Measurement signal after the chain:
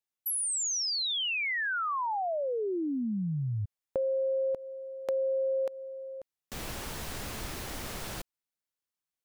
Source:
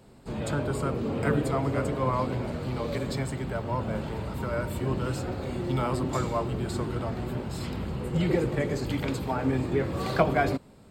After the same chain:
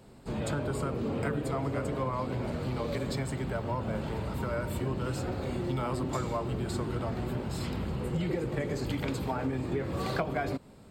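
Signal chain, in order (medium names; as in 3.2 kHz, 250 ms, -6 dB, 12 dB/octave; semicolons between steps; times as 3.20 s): compression 5:1, threshold -28 dBFS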